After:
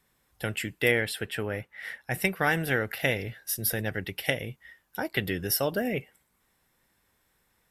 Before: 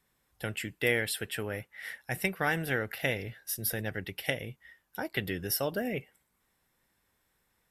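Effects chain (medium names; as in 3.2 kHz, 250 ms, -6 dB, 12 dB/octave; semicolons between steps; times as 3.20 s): 0.91–2.14 s: treble shelf 4.8 kHz -8.5 dB; trim +4 dB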